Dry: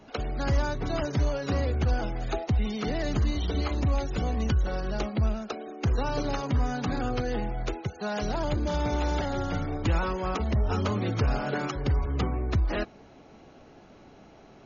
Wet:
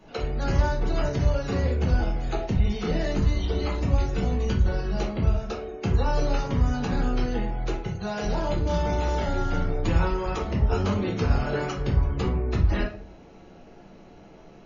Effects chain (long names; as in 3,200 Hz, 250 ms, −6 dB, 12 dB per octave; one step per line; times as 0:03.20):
rectangular room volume 36 cubic metres, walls mixed, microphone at 0.81 metres
level −3.5 dB